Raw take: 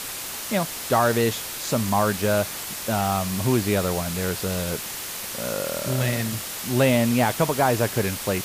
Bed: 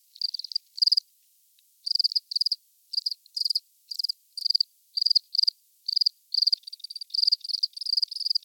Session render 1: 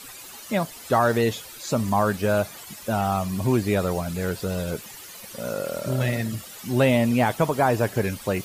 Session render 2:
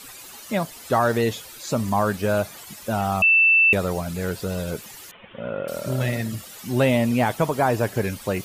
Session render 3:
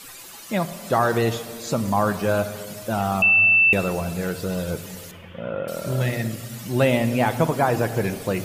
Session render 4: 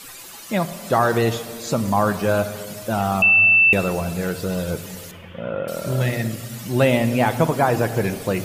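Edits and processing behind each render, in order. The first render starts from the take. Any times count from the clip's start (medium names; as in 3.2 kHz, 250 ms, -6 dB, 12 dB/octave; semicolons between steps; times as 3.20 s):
noise reduction 13 dB, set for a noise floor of -33 dBFS
3.22–3.73 s: bleep 2.66 kHz -12.5 dBFS; 5.11–5.68 s: steep low-pass 3.4 kHz 96 dB/octave
simulated room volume 3600 m³, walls mixed, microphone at 0.76 m
trim +2 dB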